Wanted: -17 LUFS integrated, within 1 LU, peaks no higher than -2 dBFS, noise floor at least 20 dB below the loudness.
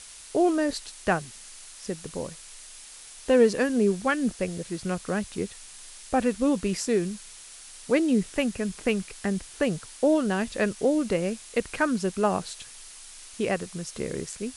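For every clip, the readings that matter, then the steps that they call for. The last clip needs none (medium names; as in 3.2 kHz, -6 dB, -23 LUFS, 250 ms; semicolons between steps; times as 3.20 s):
noise floor -46 dBFS; noise floor target -47 dBFS; loudness -27.0 LUFS; peak level -9.0 dBFS; loudness target -17.0 LUFS
-> noise print and reduce 6 dB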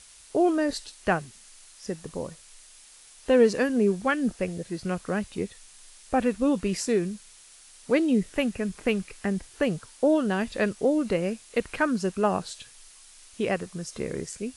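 noise floor -52 dBFS; loudness -27.0 LUFS; peak level -9.0 dBFS; loudness target -17.0 LUFS
-> trim +10 dB; peak limiter -2 dBFS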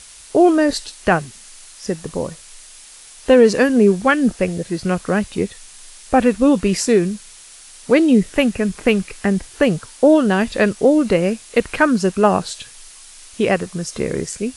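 loudness -17.0 LUFS; peak level -2.0 dBFS; noise floor -42 dBFS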